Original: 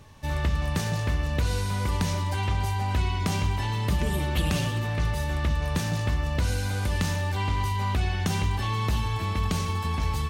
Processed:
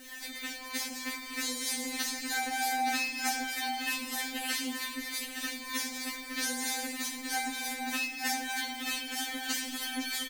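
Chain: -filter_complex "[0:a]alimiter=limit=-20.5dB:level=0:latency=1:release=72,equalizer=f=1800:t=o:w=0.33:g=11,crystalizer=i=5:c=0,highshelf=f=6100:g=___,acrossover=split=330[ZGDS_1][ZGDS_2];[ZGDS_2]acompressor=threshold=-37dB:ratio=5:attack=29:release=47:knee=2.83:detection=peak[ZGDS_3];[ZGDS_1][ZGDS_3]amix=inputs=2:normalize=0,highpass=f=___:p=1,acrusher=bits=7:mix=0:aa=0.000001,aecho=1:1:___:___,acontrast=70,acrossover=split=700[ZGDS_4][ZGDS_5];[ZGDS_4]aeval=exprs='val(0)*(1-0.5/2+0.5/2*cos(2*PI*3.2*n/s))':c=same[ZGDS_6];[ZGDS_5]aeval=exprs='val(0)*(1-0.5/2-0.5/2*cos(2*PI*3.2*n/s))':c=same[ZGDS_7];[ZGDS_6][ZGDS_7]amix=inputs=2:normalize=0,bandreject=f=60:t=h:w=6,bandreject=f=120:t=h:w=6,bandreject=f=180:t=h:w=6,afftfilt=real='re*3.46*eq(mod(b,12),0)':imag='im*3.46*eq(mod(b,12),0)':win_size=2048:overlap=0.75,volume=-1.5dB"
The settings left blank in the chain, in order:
-6, 52, 870, 0.531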